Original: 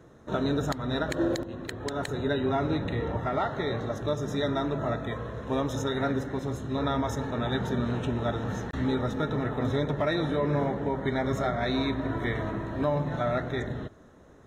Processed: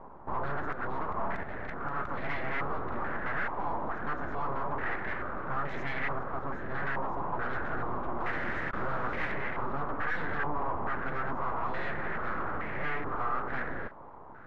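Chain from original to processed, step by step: 10.03–11.05 s: comb 1.1 ms, depth 85%; in parallel at +2.5 dB: compression, threshold -38 dBFS, peak gain reduction 16.5 dB; on the sum: saturation -23 dBFS, distortion -13 dB; 8.20–9.32 s: word length cut 6-bit, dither none; full-wave rectifier; thinning echo 277 ms, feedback 64%, level -20 dB; step-sequenced low-pass 2.3 Hz 1–2 kHz; trim -3.5 dB

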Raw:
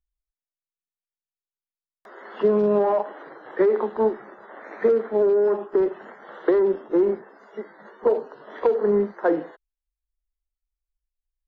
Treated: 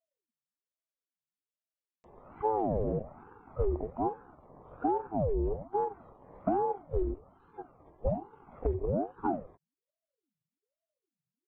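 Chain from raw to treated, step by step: pitch shift -11.5 st; ring modulator with a swept carrier 400 Hz, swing 65%, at 1.2 Hz; trim -7.5 dB

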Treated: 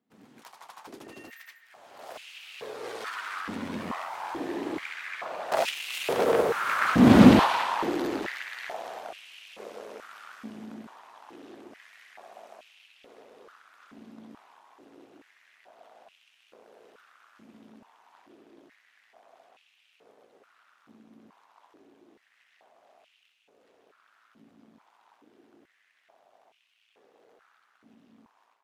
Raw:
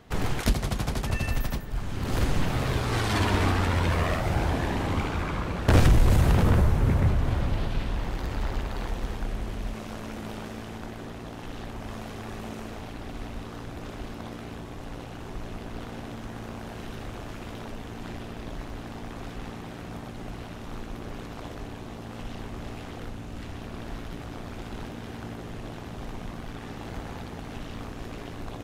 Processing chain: one-sided wavefolder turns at -20.5 dBFS; Doppler pass-by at 7.26 s, 10 m/s, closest 1.6 m; level rider gain up to 14 dB; step-sequenced high-pass 2.3 Hz 230–2700 Hz; trim +2.5 dB

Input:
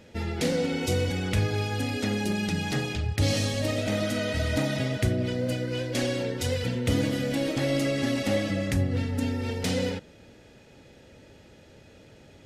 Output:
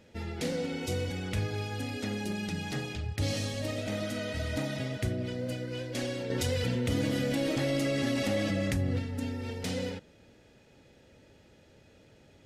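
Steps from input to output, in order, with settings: 6.30–8.99 s: level flattener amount 70%; trim -6.5 dB

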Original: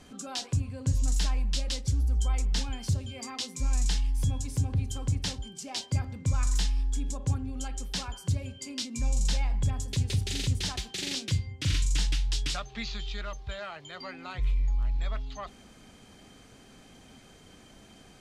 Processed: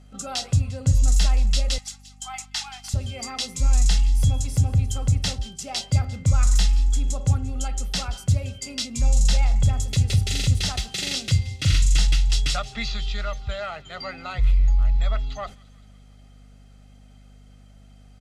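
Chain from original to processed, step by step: 1.78–2.94 s: elliptic high-pass 770 Hz, stop band 40 dB; gate -45 dBFS, range -13 dB; comb 1.5 ms, depth 51%; hum 50 Hz, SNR 28 dB; on a send: feedback echo behind a high-pass 174 ms, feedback 61%, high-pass 2.2 kHz, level -18 dB; on the sum: trim +5.5 dB

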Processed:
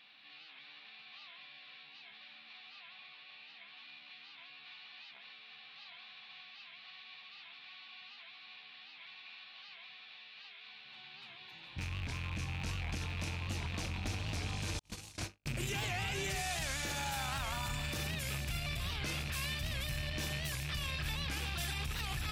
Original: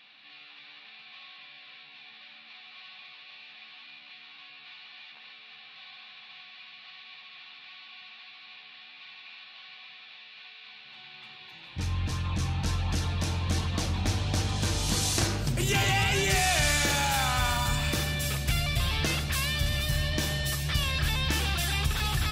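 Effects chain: rattle on loud lows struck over -30 dBFS, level -21 dBFS; 2.76–3.77 s: Bessel low-pass 4.9 kHz; 14.79–15.46 s: gate -23 dBFS, range -59 dB; peak limiter -23.5 dBFS, peak gain reduction 10.5 dB; warped record 78 rpm, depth 160 cents; trim -5 dB

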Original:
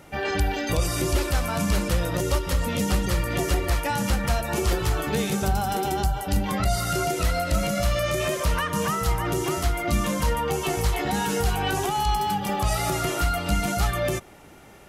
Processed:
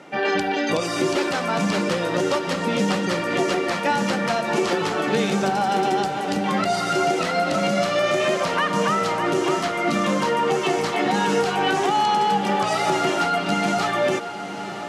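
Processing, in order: high-pass 190 Hz 24 dB/octave; distance through air 95 m; echo that smears into a reverb 957 ms, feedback 67%, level -12.5 dB; trim +6 dB

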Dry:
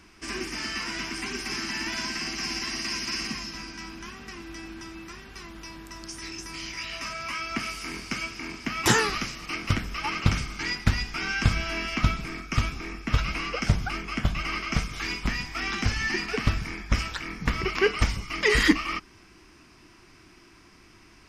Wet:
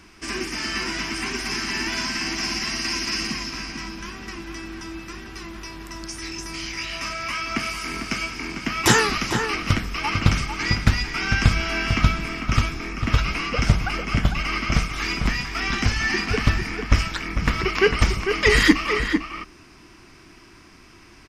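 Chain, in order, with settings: echo from a far wall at 77 m, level -6 dB; trim +4.5 dB

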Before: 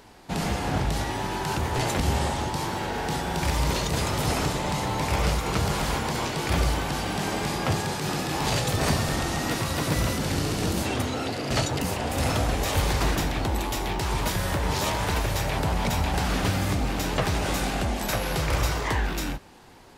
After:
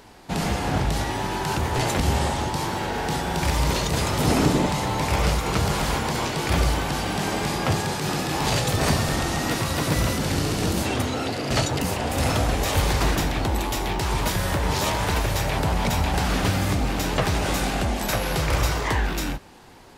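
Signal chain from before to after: 4.19–4.65 s: peaking EQ 260 Hz +5.5 dB -> +12.5 dB 1.5 oct; trim +2.5 dB

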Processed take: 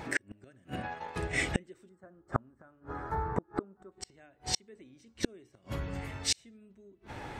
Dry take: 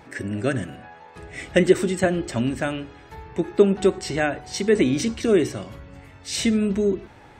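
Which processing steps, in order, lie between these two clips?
inverted gate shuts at -20 dBFS, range -40 dB; 0.76–1.37 s: transient shaper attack +2 dB, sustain -11 dB; 1.89–3.92 s: resonant high shelf 1.9 kHz -13 dB, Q 3; trim +5 dB

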